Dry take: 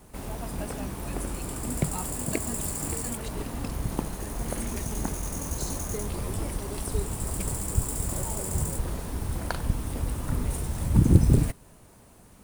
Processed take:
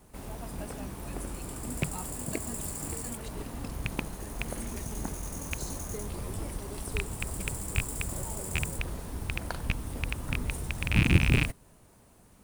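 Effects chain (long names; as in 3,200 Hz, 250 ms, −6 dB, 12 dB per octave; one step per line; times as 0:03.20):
loose part that buzzes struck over −23 dBFS, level −10 dBFS
level −5 dB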